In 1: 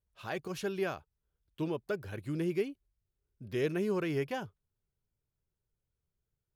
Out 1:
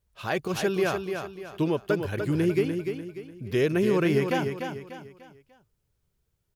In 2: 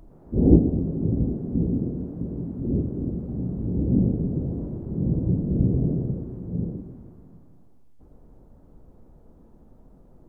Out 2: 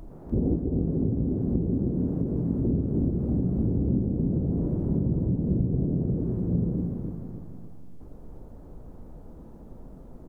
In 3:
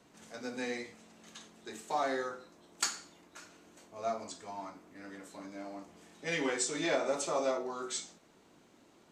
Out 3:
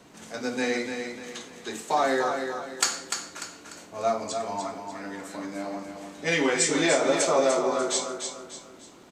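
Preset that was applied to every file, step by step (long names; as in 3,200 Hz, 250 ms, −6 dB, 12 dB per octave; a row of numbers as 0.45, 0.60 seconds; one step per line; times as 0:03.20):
downward compressor 12 to 1, threshold −28 dBFS
on a send: repeating echo 296 ms, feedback 38%, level −6.5 dB
on the sum: loudness normalisation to −27 LKFS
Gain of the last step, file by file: +9.5, +6.0, +10.0 decibels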